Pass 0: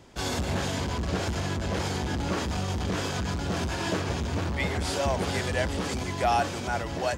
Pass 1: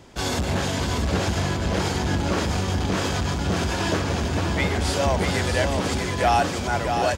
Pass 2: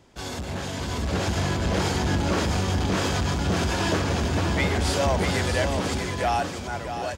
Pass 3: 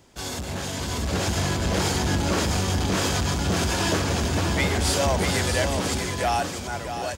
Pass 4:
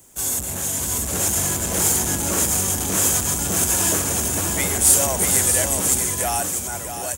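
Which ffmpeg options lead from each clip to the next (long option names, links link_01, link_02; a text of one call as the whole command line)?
ffmpeg -i in.wav -af "aecho=1:1:640:0.501,volume=4.5dB" out.wav
ffmpeg -i in.wav -af "dynaudnorm=framelen=200:gausssize=11:maxgain=11.5dB,asoftclip=type=tanh:threshold=-5dB,volume=-8dB" out.wav
ffmpeg -i in.wav -af "highshelf=frequency=6100:gain=10" out.wav
ffmpeg -i in.wav -filter_complex "[0:a]acrossover=split=170[link_01][link_02];[link_01]alimiter=level_in=2dB:limit=-24dB:level=0:latency=1,volume=-2dB[link_03];[link_02]aexciter=amount=8.9:drive=6.2:freq=6800[link_04];[link_03][link_04]amix=inputs=2:normalize=0,volume=-1.5dB" out.wav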